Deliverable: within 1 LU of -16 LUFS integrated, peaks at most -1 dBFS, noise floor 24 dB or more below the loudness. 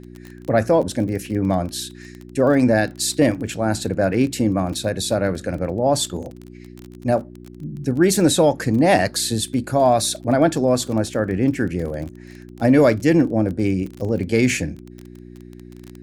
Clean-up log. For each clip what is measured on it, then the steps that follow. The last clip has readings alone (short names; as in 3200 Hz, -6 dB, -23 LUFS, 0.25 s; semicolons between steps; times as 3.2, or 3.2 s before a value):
ticks 24/s; hum 60 Hz; harmonics up to 360 Hz; hum level -41 dBFS; loudness -19.5 LUFS; peak -4.5 dBFS; loudness target -16.0 LUFS
-> de-click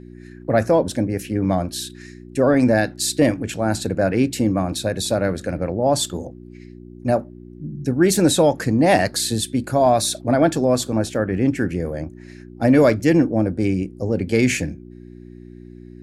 ticks 0/s; hum 60 Hz; harmonics up to 360 Hz; hum level -41 dBFS
-> de-hum 60 Hz, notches 6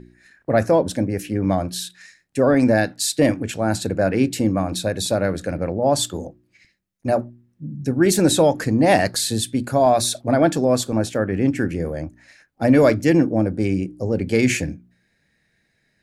hum none; loudness -20.0 LUFS; peak -4.0 dBFS; loudness target -16.0 LUFS
-> gain +4 dB; limiter -1 dBFS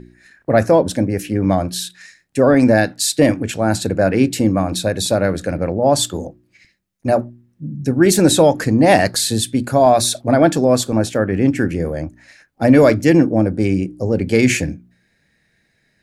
loudness -16.0 LUFS; peak -1.0 dBFS; noise floor -64 dBFS